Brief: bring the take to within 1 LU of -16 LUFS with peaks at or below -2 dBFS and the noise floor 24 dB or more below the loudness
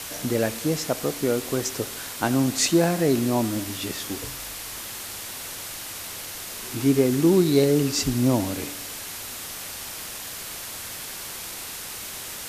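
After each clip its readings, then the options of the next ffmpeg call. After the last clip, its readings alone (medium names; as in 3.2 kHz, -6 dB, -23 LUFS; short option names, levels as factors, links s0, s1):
noise floor -36 dBFS; noise floor target -50 dBFS; loudness -25.5 LUFS; peak level -6.0 dBFS; loudness target -16.0 LUFS
-> -af "afftdn=nr=14:nf=-36"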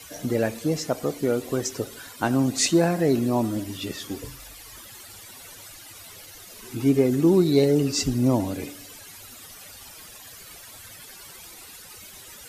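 noise floor -45 dBFS; noise floor target -48 dBFS
-> -af "afftdn=nr=6:nf=-45"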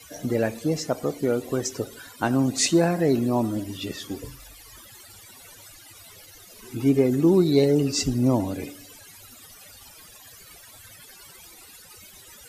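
noise floor -48 dBFS; loudness -23.5 LUFS; peak level -7.0 dBFS; loudness target -16.0 LUFS
-> -af "volume=2.37,alimiter=limit=0.794:level=0:latency=1"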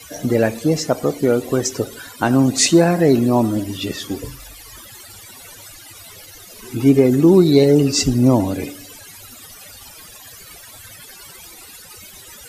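loudness -16.0 LUFS; peak level -2.0 dBFS; noise floor -41 dBFS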